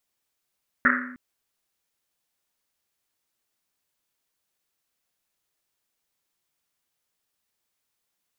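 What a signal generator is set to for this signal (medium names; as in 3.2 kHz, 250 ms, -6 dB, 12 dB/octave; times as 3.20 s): Risset drum length 0.31 s, pitch 250 Hz, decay 1.10 s, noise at 1.6 kHz, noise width 690 Hz, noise 65%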